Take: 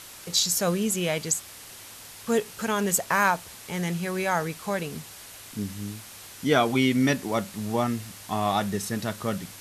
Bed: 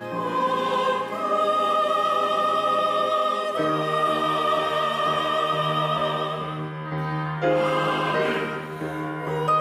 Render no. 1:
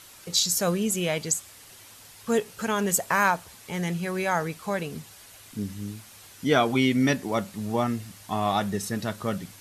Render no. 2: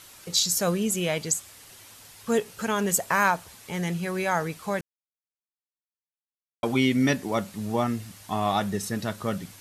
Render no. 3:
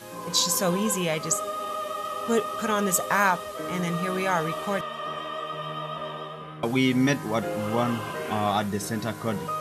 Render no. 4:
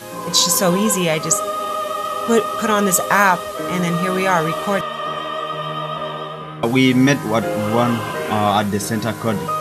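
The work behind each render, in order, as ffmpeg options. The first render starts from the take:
ffmpeg -i in.wav -af "afftdn=noise_reduction=6:noise_floor=-45" out.wav
ffmpeg -i in.wav -filter_complex "[0:a]asplit=3[link_01][link_02][link_03];[link_01]atrim=end=4.81,asetpts=PTS-STARTPTS,afade=type=out:start_time=4.806:duration=0.004:curve=hsin[link_04];[link_02]atrim=start=4.81:end=6.63,asetpts=PTS-STARTPTS,volume=0[link_05];[link_03]atrim=start=6.63,asetpts=PTS-STARTPTS,afade=type=in:duration=0.004:curve=hsin[link_06];[link_04][link_05][link_06]concat=n=3:v=0:a=1" out.wav
ffmpeg -i in.wav -i bed.wav -filter_complex "[1:a]volume=-10dB[link_01];[0:a][link_01]amix=inputs=2:normalize=0" out.wav
ffmpeg -i in.wav -af "volume=8.5dB,alimiter=limit=-1dB:level=0:latency=1" out.wav

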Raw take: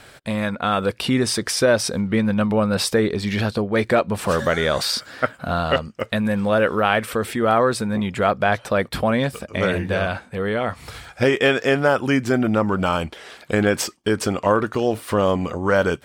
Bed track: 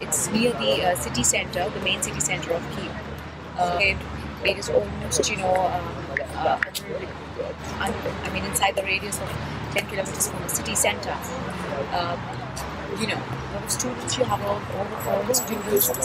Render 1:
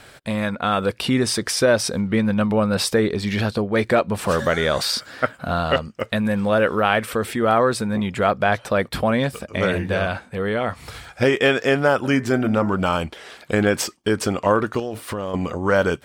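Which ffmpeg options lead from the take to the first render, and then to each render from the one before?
ffmpeg -i in.wav -filter_complex "[0:a]asplit=3[link_01][link_02][link_03];[link_01]afade=type=out:start_time=12.03:duration=0.02[link_04];[link_02]bandreject=frequency=81.65:width_type=h:width=4,bandreject=frequency=163.3:width_type=h:width=4,bandreject=frequency=244.95:width_type=h:width=4,bandreject=frequency=326.6:width_type=h:width=4,bandreject=frequency=408.25:width_type=h:width=4,bandreject=frequency=489.9:width_type=h:width=4,bandreject=frequency=571.55:width_type=h:width=4,bandreject=frequency=653.2:width_type=h:width=4,bandreject=frequency=734.85:width_type=h:width=4,bandreject=frequency=816.5:width_type=h:width=4,bandreject=frequency=898.15:width_type=h:width=4,bandreject=frequency=979.8:width_type=h:width=4,bandreject=frequency=1061.45:width_type=h:width=4,bandreject=frequency=1143.1:width_type=h:width=4,bandreject=frequency=1224.75:width_type=h:width=4,bandreject=frequency=1306.4:width_type=h:width=4,bandreject=frequency=1388.05:width_type=h:width=4,bandreject=frequency=1469.7:width_type=h:width=4,bandreject=frequency=1551.35:width_type=h:width=4,bandreject=frequency=1633:width_type=h:width=4,bandreject=frequency=1714.65:width_type=h:width=4,bandreject=frequency=1796.3:width_type=h:width=4,bandreject=frequency=1877.95:width_type=h:width=4,bandreject=frequency=1959.6:width_type=h:width=4,bandreject=frequency=2041.25:width_type=h:width=4,bandreject=frequency=2122.9:width_type=h:width=4,afade=type=in:start_time=12.03:duration=0.02,afade=type=out:start_time=12.74:duration=0.02[link_05];[link_03]afade=type=in:start_time=12.74:duration=0.02[link_06];[link_04][link_05][link_06]amix=inputs=3:normalize=0,asettb=1/sr,asplit=3[link_07][link_08][link_09];[link_07]atrim=end=14.794[link_10];[link_08]atrim=start=14.79:end=15.34,asetpts=PTS-STARTPTS,afade=type=in:duration=0.004:curve=qsin,afade=type=out:start_time=0.546:duration=0.004:curve=qsin,acompressor=threshold=-22dB:ratio=12:attack=3.2:release=140:knee=1:detection=peak[link_11];[link_09]atrim=start=15.336[link_12];[link_10][link_11]acrossfade=duration=0.004:curve1=hsin:curve2=qsin[link_13];[link_13][link_12]acrossfade=duration=0.004:curve1=qsin:curve2=hsin" out.wav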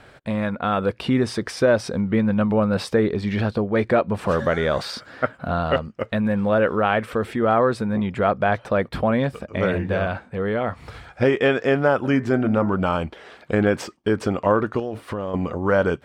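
ffmpeg -i in.wav -af "lowpass=frequency=1600:poles=1" out.wav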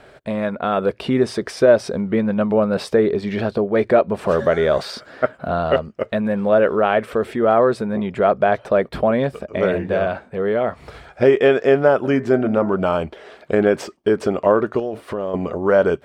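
ffmpeg -i in.wav -af "equalizer=frequency=100:width_type=o:width=0.33:gain=-8,equalizer=frequency=400:width_type=o:width=0.33:gain=7,equalizer=frequency=630:width_type=o:width=0.33:gain=7" out.wav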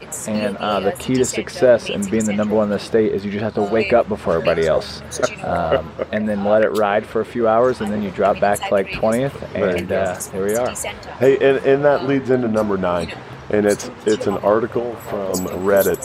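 ffmpeg -i in.wav -i bed.wav -filter_complex "[1:a]volume=-5dB[link_01];[0:a][link_01]amix=inputs=2:normalize=0" out.wav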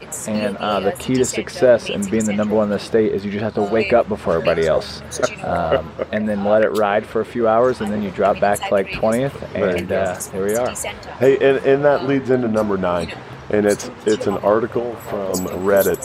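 ffmpeg -i in.wav -af anull out.wav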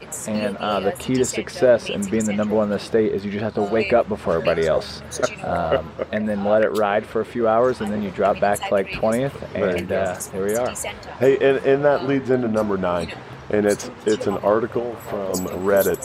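ffmpeg -i in.wav -af "volume=-2.5dB" out.wav

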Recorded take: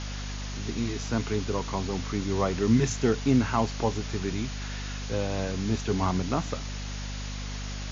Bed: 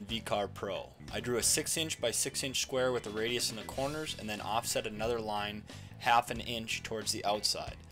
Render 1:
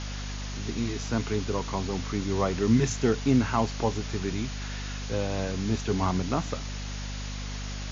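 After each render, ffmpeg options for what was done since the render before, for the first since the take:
ffmpeg -i in.wav -af anull out.wav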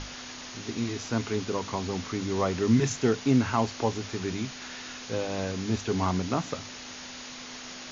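ffmpeg -i in.wav -af "bandreject=frequency=50:width_type=h:width=6,bandreject=frequency=100:width_type=h:width=6,bandreject=frequency=150:width_type=h:width=6,bandreject=frequency=200:width_type=h:width=6" out.wav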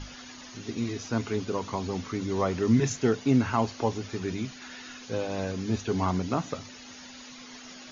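ffmpeg -i in.wav -af "afftdn=noise_reduction=10:noise_floor=-42" out.wav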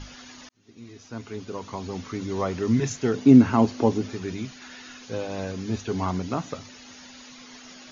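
ffmpeg -i in.wav -filter_complex "[0:a]asettb=1/sr,asplit=3[link_01][link_02][link_03];[link_01]atrim=end=3.144[link_04];[link_02]atrim=start=3.14:end=4.13,asetpts=PTS-STARTPTS,afade=type=in:duration=0.004:curve=qsin,afade=type=out:start_time=0.986:duration=0.004:curve=qsin,equalizer=frequency=260:width_type=o:width=2:gain=10.5[link_05];[link_03]atrim=start=4.126[link_06];[link_04][link_05]acrossfade=duration=0.004:curve1=hsin:curve2=qsin[link_07];[link_07][link_06]acrossfade=duration=0.004:curve1=qsin:curve2=hsin,asplit=2[link_08][link_09];[link_08]atrim=end=0.49,asetpts=PTS-STARTPTS,afade=type=out:start_time=0.486:duration=0.004:curve=hsin[link_10];[link_09]atrim=start=0.49,asetpts=PTS-STARTPTS,afade=type=in:duration=1.67[link_11];[link_10][link_11]concat=n=2:v=0:a=1" out.wav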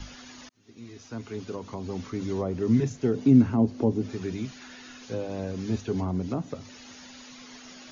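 ffmpeg -i in.wav -filter_complex "[0:a]acrossover=split=210|630[link_01][link_02][link_03];[link_02]alimiter=limit=-17dB:level=0:latency=1:release=358[link_04];[link_03]acompressor=threshold=-44dB:ratio=6[link_05];[link_01][link_04][link_05]amix=inputs=3:normalize=0" out.wav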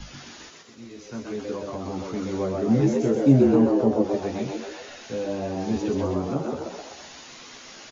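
ffmpeg -i in.wav -filter_complex "[0:a]asplit=2[link_01][link_02];[link_02]adelay=14,volume=-3dB[link_03];[link_01][link_03]amix=inputs=2:normalize=0,asplit=8[link_04][link_05][link_06][link_07][link_08][link_09][link_10][link_11];[link_05]adelay=128,afreqshift=91,volume=-3dB[link_12];[link_06]adelay=256,afreqshift=182,volume=-8.4dB[link_13];[link_07]adelay=384,afreqshift=273,volume=-13.7dB[link_14];[link_08]adelay=512,afreqshift=364,volume=-19.1dB[link_15];[link_09]adelay=640,afreqshift=455,volume=-24.4dB[link_16];[link_10]adelay=768,afreqshift=546,volume=-29.8dB[link_17];[link_11]adelay=896,afreqshift=637,volume=-35.1dB[link_18];[link_04][link_12][link_13][link_14][link_15][link_16][link_17][link_18]amix=inputs=8:normalize=0" out.wav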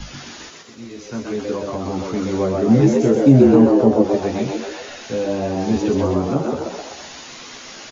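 ffmpeg -i in.wav -af "volume=7dB,alimiter=limit=-1dB:level=0:latency=1" out.wav

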